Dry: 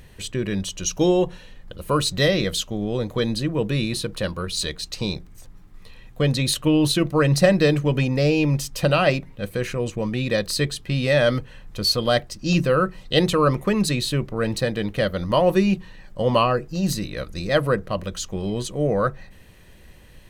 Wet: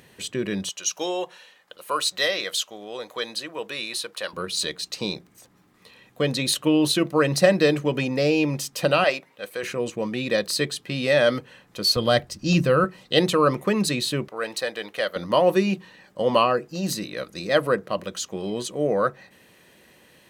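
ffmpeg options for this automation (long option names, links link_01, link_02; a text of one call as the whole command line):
ffmpeg -i in.wav -af "asetnsamples=nb_out_samples=441:pad=0,asendcmd='0.69 highpass f 700;4.33 highpass f 220;9.04 highpass f 540;9.63 highpass f 220;11.96 highpass f 70;12.84 highpass f 190;14.28 highpass f 580;15.16 highpass f 230',highpass=190" out.wav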